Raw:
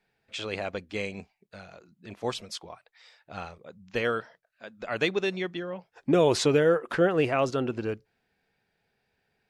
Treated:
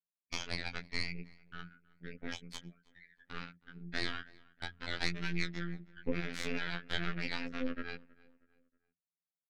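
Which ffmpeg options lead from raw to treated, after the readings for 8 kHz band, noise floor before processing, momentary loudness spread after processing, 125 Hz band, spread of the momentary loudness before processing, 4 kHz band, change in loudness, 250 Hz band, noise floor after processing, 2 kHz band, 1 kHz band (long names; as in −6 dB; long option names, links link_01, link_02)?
−10.0 dB, −77 dBFS, 14 LU, −9.0 dB, 18 LU, −4.5 dB, −12.0 dB, −11.0 dB, below −85 dBFS, −5.0 dB, −13.5 dB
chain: -filter_complex "[0:a]asplit=2[link_01][link_02];[link_02]highpass=frequency=720:poles=1,volume=18dB,asoftclip=type=tanh:threshold=-10dB[link_03];[link_01][link_03]amix=inputs=2:normalize=0,lowpass=frequency=7000:poles=1,volume=-6dB,firequalizer=gain_entry='entry(110,0);entry(180,12);entry(310,-22);entry(630,-10);entry(950,-20);entry(1500,6);entry(2800,-11);entry(5600,-12);entry(11000,4)':delay=0.05:min_phase=1,anlmdn=10,asplit=3[link_04][link_05][link_06];[link_04]bandpass=frequency=270:width_type=q:width=8,volume=0dB[link_07];[link_05]bandpass=frequency=2290:width_type=q:width=8,volume=-6dB[link_08];[link_06]bandpass=frequency=3010:width_type=q:width=8,volume=-9dB[link_09];[link_07][link_08][link_09]amix=inputs=3:normalize=0,flanger=delay=16.5:depth=4.8:speed=0.38,acompressor=mode=upward:threshold=-36dB:ratio=2.5,aeval=exprs='0.106*(cos(1*acos(clip(val(0)/0.106,-1,1)))-cos(1*PI/2))+0.0015*(cos(2*acos(clip(val(0)/0.106,-1,1)))-cos(2*PI/2))+0.00335*(cos(4*acos(clip(val(0)/0.106,-1,1)))-cos(4*PI/2))+0.0376*(cos(8*acos(clip(val(0)/0.106,-1,1)))-cos(8*PI/2))':channel_layout=same,agate=range=-46dB:threshold=-58dB:ratio=16:detection=peak,bandreject=frequency=50:width_type=h:width=6,bandreject=frequency=100:width_type=h:width=6,bandreject=frequency=150:width_type=h:width=6,bandreject=frequency=200:width_type=h:width=6,asplit=2[link_10][link_11];[link_11]adelay=318,lowpass=frequency=2600:poles=1,volume=-23dB,asplit=2[link_12][link_13];[link_13]adelay=318,lowpass=frequency=2600:poles=1,volume=0.42,asplit=2[link_14][link_15];[link_15]adelay=318,lowpass=frequency=2600:poles=1,volume=0.42[link_16];[link_10][link_12][link_14][link_16]amix=inputs=4:normalize=0,afftfilt=real='hypot(re,im)*cos(PI*b)':imag='0':win_size=2048:overlap=0.75,volume=4.5dB"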